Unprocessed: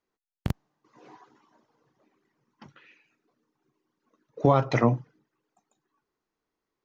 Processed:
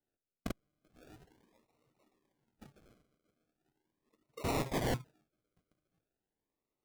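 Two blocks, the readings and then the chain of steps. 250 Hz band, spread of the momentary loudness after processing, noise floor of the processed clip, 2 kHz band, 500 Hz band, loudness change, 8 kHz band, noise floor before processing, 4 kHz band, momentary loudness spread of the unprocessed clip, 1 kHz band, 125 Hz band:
-11.5 dB, 13 LU, under -85 dBFS, -7.5 dB, -13.0 dB, -12.0 dB, no reading, under -85 dBFS, -0.5 dB, 14 LU, -12.5 dB, -14.0 dB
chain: decimation with a swept rate 38×, swing 60% 0.4 Hz; integer overflow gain 21.5 dB; trim -6 dB

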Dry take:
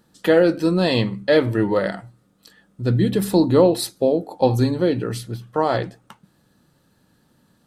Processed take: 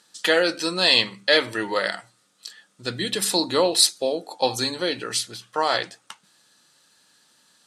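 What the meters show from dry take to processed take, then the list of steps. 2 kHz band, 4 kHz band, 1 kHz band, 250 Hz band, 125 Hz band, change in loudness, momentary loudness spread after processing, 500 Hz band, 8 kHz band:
+5.0 dB, +10.5 dB, -1.0 dB, -10.5 dB, -17.0 dB, -2.0 dB, 16 LU, -6.0 dB, +10.5 dB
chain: frequency weighting ITU-R 468

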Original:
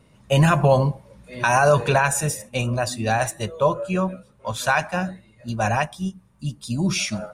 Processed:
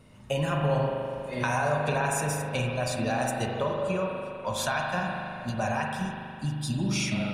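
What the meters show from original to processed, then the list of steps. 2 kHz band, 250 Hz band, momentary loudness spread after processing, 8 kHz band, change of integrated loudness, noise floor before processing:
-7.0 dB, -5.5 dB, 7 LU, -7.5 dB, -7.5 dB, -56 dBFS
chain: compression 5:1, threshold -28 dBFS, peak gain reduction 14.5 dB; spring tank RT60 2.6 s, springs 40 ms, chirp 55 ms, DRR -0.5 dB

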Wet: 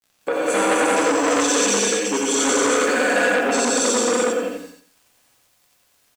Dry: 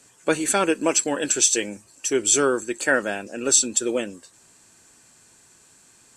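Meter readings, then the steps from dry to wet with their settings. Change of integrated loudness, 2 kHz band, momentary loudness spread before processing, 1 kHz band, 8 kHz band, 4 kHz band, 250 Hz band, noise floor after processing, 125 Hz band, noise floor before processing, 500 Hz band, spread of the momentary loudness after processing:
+2.5 dB, +6.0 dB, 11 LU, +8.0 dB, -0.5 dB, +4.0 dB, +4.5 dB, -62 dBFS, no reading, -55 dBFS, +5.5 dB, 6 LU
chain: high-pass 310 Hz 12 dB/octave; gate with hold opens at -45 dBFS; low-pass 1.6 kHz 6 dB/octave; comb 4.1 ms, depth 98%; compression, threshold -27 dBFS, peak gain reduction 13 dB; small samples zeroed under -50.5 dBFS; feedback delay 88 ms, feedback 31%, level -3 dB; gated-style reverb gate 470 ms flat, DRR -8 dB; transformer saturation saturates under 1.7 kHz; trim +5.5 dB

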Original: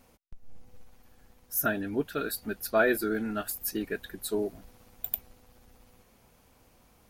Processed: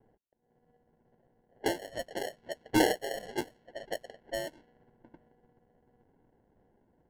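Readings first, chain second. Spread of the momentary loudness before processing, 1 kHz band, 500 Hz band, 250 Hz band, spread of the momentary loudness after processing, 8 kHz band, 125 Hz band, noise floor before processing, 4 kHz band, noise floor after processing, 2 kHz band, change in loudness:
10 LU, -1.0 dB, -4.0 dB, -2.5 dB, 16 LU, -5.5 dB, -3.5 dB, -62 dBFS, +3.0 dB, -72 dBFS, -6.0 dB, -3.5 dB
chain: mistuned SSB +250 Hz 470–2300 Hz; sample-and-hold 36×; level-controlled noise filter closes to 1.1 kHz, open at -33 dBFS

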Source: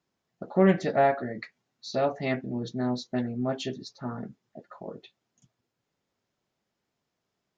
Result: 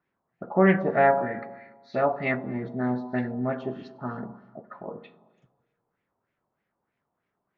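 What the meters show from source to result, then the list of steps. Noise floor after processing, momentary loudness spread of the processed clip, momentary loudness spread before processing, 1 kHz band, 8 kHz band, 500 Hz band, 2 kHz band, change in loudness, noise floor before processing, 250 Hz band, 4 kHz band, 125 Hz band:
-81 dBFS, 20 LU, 21 LU, +3.5 dB, no reading, +2.0 dB, +6.0 dB, +2.0 dB, -83 dBFS, +1.0 dB, -10.5 dB, +1.0 dB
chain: Schroeder reverb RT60 1.3 s, combs from 32 ms, DRR 10.5 dB; LFO low-pass sine 3.2 Hz 910–2200 Hz

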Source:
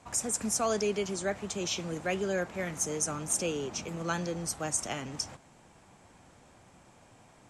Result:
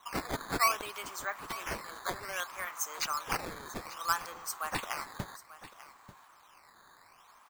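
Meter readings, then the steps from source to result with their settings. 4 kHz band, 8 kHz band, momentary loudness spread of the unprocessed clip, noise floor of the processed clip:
-1.5 dB, -8.5 dB, 7 LU, -60 dBFS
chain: resonant high-pass 1.1 kHz, resonance Q 4.6; decimation with a swept rate 9×, swing 160% 0.62 Hz; delay 890 ms -16 dB; trim -3.5 dB

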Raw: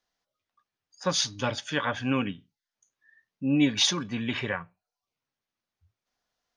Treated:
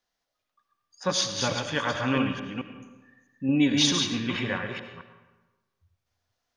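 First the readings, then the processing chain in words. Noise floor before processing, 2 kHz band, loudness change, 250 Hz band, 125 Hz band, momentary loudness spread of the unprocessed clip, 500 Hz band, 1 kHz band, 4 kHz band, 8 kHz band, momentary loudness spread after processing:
under -85 dBFS, +2.0 dB, +1.5 dB, +2.0 dB, +1.5 dB, 11 LU, +2.0 dB, +2.0 dB, +1.5 dB, +1.5 dB, 15 LU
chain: chunks repeated in reverse 218 ms, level -5 dB; algorithmic reverb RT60 1.2 s, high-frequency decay 0.65×, pre-delay 45 ms, DRR 7.5 dB

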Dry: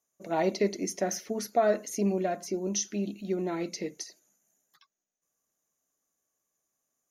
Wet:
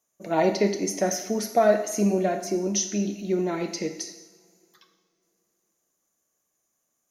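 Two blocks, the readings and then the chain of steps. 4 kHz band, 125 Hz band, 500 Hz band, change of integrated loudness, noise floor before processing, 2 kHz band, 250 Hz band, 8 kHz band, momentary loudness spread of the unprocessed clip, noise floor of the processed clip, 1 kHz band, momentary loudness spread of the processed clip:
+5.5 dB, +5.5 dB, +5.5 dB, +5.5 dB, -84 dBFS, +5.5 dB, +5.5 dB, +5.5 dB, 9 LU, -77 dBFS, +5.0 dB, 9 LU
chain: two-slope reverb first 0.89 s, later 3.5 s, from -24 dB, DRR 6 dB; trim +4.5 dB

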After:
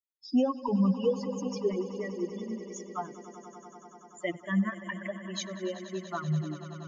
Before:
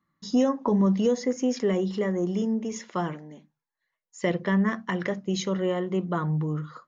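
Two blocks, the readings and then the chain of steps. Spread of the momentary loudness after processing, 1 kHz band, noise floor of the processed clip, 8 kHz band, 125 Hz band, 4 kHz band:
19 LU, -5.0 dB, -55 dBFS, no reading, -5.5 dB, -4.5 dB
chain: expander on every frequency bin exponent 3; on a send: echo with a slow build-up 96 ms, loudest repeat 5, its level -17 dB

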